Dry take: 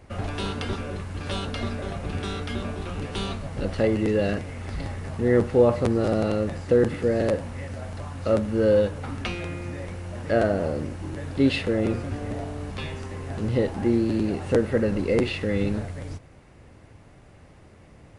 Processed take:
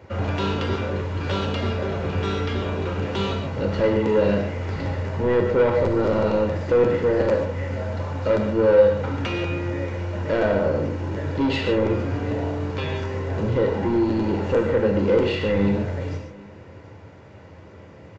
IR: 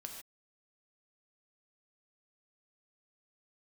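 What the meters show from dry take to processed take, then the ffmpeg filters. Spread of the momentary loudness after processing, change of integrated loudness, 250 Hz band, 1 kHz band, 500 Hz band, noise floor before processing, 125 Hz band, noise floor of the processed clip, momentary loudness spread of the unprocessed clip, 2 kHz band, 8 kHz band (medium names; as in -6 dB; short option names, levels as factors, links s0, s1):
8 LU, +3.0 dB, +1.5 dB, +5.5 dB, +4.0 dB, -51 dBFS, +3.5 dB, -44 dBFS, 13 LU, +3.5 dB, no reading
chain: -filter_complex "[0:a]highpass=f=91:w=0.5412,highpass=f=91:w=1.3066,asplit=2[s0][s1];[s1]alimiter=limit=0.133:level=0:latency=1:release=313,volume=0.75[s2];[s0][s2]amix=inputs=2:normalize=0,highshelf=f=3900:g=-10.5,aresample=16000,asoftclip=type=tanh:threshold=0.133,aresample=44100,aecho=1:1:2.1:0.36,aecho=1:1:744:0.0708[s3];[1:a]atrim=start_sample=2205[s4];[s3][s4]afir=irnorm=-1:irlink=0,volume=2.11"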